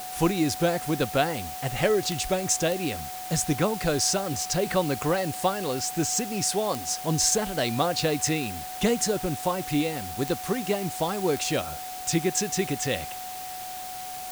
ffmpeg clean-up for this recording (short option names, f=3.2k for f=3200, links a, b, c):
-af "adeclick=t=4,bandreject=f=740:w=30,afwtdn=0.01"